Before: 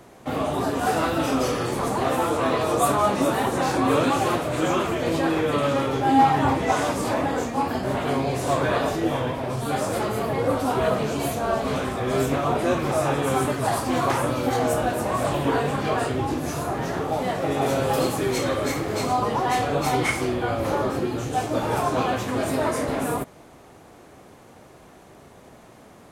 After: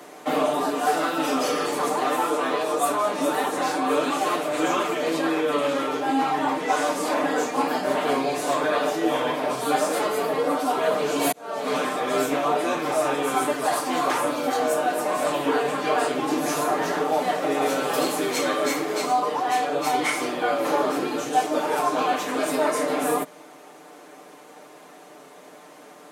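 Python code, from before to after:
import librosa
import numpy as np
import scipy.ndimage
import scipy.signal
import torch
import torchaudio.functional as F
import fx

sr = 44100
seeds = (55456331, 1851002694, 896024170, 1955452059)

y = fx.edit(x, sr, fx.fade_in_span(start_s=11.32, length_s=1.06), tone=tone)
y = scipy.signal.sosfilt(scipy.signal.bessel(8, 320.0, 'highpass', norm='mag', fs=sr, output='sos'), y)
y = y + 0.65 * np.pad(y, (int(6.7 * sr / 1000.0), 0))[:len(y)]
y = fx.rider(y, sr, range_db=10, speed_s=0.5)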